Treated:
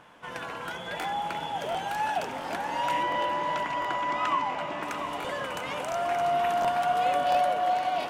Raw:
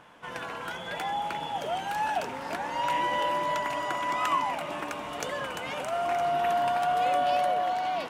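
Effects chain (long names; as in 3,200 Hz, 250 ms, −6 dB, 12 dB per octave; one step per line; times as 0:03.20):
0:03.03–0:04.83: high-frequency loss of the air 96 metres
echo with a time of its own for lows and highs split 680 Hz, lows 191 ms, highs 692 ms, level −9.5 dB
regular buffer underruns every 0.70 s, samples 1,024, repeat, from 0:01.00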